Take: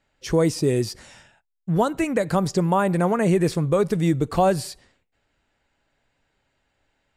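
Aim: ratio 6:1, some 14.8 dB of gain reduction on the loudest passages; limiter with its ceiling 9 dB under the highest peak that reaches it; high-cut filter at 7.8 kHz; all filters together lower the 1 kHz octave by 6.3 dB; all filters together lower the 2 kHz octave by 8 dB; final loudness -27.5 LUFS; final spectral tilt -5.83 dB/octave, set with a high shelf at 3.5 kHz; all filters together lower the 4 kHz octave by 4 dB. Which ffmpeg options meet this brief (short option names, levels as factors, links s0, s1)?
-af "lowpass=7800,equalizer=f=1000:t=o:g=-7.5,equalizer=f=2000:t=o:g=-7.5,highshelf=f=3500:g=5,equalizer=f=4000:t=o:g=-7,acompressor=threshold=0.0224:ratio=6,volume=4.47,alimiter=limit=0.126:level=0:latency=1"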